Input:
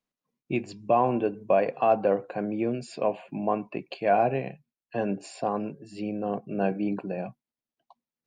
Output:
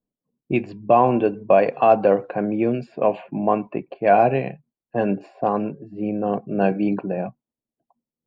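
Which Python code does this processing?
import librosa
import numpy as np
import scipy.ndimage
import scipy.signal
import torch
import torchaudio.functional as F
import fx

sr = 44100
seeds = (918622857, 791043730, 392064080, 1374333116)

y = fx.env_lowpass(x, sr, base_hz=480.0, full_db=-20.0)
y = fx.end_taper(y, sr, db_per_s=560.0)
y = F.gain(torch.from_numpy(y), 7.0).numpy()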